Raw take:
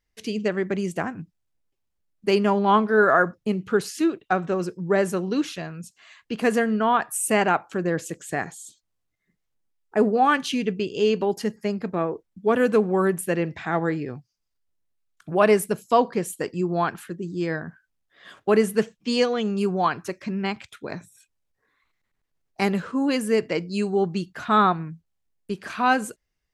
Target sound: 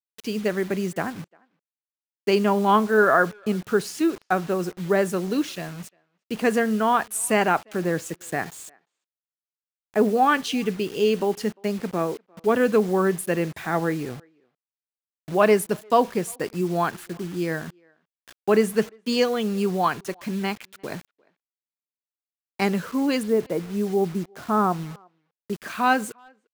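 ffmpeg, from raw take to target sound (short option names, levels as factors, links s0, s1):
-filter_complex "[0:a]asettb=1/sr,asplit=3[s0][s1][s2];[s0]atrim=end=23.234[s3];[s1]atrim=start=23.23:end=25.53,asetpts=PTS-STARTPTS,afade=t=in:d=0.004:c=qsin,afade=t=out:st=2.296:d=0.004:c=qsin,lowpass=1000[s4];[s2]atrim=start=25.526[s5];[s3][s4]acrossfade=d=0.004:c1=hsin:c2=qsin[s6];[s6][s5]acrossfade=d=0.004:c1=qsin:c2=hsin,agate=range=0.0224:threshold=0.00891:ratio=3:detection=peak,highpass=69,acrusher=bits=6:mix=0:aa=0.000001,asplit=2[s7][s8];[s8]adelay=350,highpass=300,lowpass=3400,asoftclip=type=hard:threshold=0.211,volume=0.0355[s9];[s7][s9]amix=inputs=2:normalize=0"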